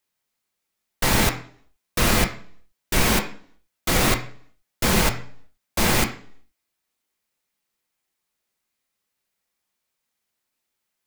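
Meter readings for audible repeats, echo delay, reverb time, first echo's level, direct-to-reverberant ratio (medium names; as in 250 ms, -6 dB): no echo, no echo, 0.55 s, no echo, 2.0 dB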